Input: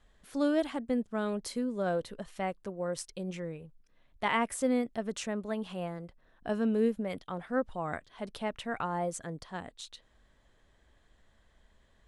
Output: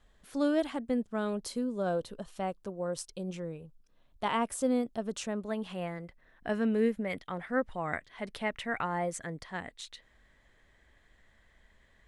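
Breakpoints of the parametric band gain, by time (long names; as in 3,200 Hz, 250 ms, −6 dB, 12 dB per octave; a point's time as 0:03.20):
parametric band 2,000 Hz 0.52 octaves
0:01.18 −0.5 dB
0:01.65 −8 dB
0:05.03 −8 dB
0:05.57 +1 dB
0:05.85 +9.5 dB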